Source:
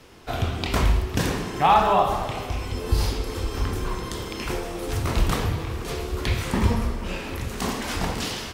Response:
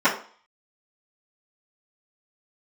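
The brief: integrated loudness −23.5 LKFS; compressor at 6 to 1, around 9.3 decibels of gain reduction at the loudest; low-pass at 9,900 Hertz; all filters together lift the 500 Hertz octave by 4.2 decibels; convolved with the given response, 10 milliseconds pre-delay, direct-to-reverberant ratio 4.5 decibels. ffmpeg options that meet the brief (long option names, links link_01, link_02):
-filter_complex "[0:a]lowpass=9900,equalizer=frequency=500:width_type=o:gain=5.5,acompressor=threshold=-21dB:ratio=6,asplit=2[link_01][link_02];[1:a]atrim=start_sample=2205,adelay=10[link_03];[link_02][link_03]afir=irnorm=-1:irlink=0,volume=-24dB[link_04];[link_01][link_04]amix=inputs=2:normalize=0,volume=3dB"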